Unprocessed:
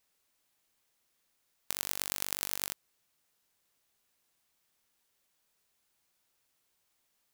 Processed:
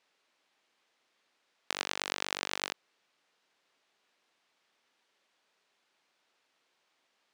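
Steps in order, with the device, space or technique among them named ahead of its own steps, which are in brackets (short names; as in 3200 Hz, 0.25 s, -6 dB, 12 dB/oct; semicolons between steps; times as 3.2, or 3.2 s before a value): early digital voice recorder (BPF 280–3900 Hz; block floating point 7-bit); gain +7.5 dB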